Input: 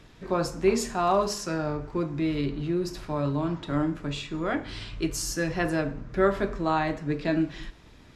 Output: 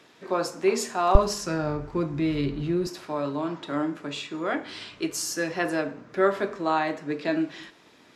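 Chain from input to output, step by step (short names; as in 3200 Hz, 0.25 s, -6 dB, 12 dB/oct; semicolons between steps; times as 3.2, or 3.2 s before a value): HPF 310 Hz 12 dB/oct, from 1.15 s 41 Hz, from 2.87 s 280 Hz; gain +1.5 dB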